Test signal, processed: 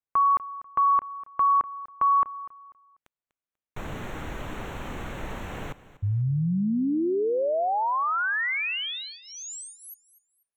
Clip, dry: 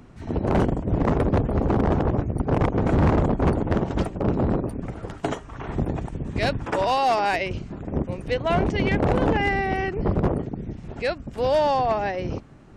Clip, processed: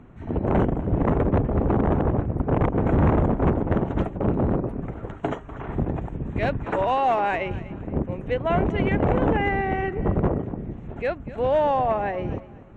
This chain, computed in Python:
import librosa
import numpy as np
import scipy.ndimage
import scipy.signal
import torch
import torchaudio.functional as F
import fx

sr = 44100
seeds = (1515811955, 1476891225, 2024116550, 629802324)

y = scipy.signal.lfilter(np.full(9, 1.0 / 9), 1.0, x)
y = fx.echo_feedback(y, sr, ms=245, feedback_pct=28, wet_db=-17)